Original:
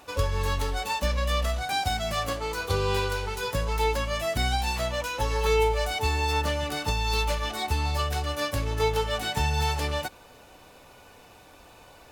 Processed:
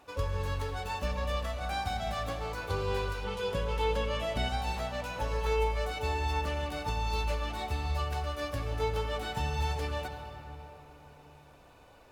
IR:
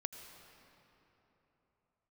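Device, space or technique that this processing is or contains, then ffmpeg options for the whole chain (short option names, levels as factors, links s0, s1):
swimming-pool hall: -filter_complex "[1:a]atrim=start_sample=2205[s0];[0:a][s0]afir=irnorm=-1:irlink=0,highshelf=f=3300:g=-7,asettb=1/sr,asplit=3[s1][s2][s3];[s1]atrim=end=3.244[s4];[s2]atrim=start=3.24:end=4.49,asetpts=PTS-STARTPTS,afade=t=in:d=0.004:c=qsin,afade=t=out:st=1.246:d=0.004:c=qsin,equalizer=f=200:t=o:w=0.33:g=7,equalizer=f=500:t=o:w=0.33:g=6,equalizer=f=3150:t=o:w=0.33:g=9,equalizer=f=16000:t=o:w=0.33:g=-12[s5];[s3]atrim=start=4.486[s6];[s4][s5]acrossfade=d=0.004:c1=hsin:c2=qsin[s7];[s7][s6]acrossfade=d=0.004:c1=qsin:c2=hsin,volume=0.631"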